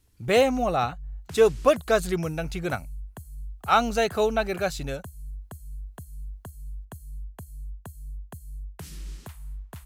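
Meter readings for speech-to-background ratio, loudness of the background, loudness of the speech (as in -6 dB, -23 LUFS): 17.5 dB, -42.0 LUFS, -24.5 LUFS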